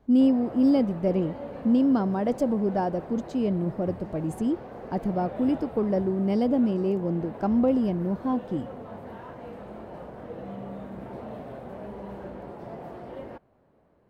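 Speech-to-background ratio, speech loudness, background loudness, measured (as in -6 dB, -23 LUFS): 14.0 dB, -26.0 LUFS, -40.0 LUFS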